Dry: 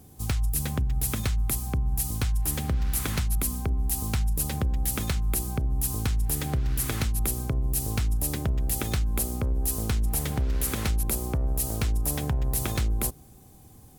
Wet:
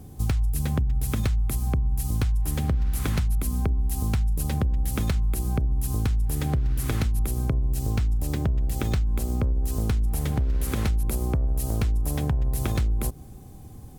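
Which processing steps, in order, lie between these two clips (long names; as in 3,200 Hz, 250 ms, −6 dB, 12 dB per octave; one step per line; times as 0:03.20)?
spectral tilt −1.5 dB per octave
downward compressor, threshold −25 dBFS, peak gain reduction 9 dB
0:07.64–0:09.81: parametric band 11,000 Hz −7.5 dB 0.32 octaves
level +4 dB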